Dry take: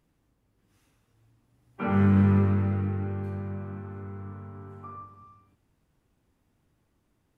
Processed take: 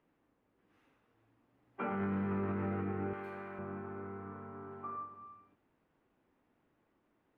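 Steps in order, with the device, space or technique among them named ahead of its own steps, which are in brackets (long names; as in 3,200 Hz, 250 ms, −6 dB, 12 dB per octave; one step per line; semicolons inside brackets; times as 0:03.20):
DJ mixer with the lows and highs turned down (three-way crossover with the lows and the highs turned down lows −16 dB, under 220 Hz, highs −21 dB, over 2,900 Hz; brickwall limiter −29.5 dBFS, peak gain reduction 11 dB)
0:03.13–0:03.59: spectral tilt +4 dB per octave
level +1 dB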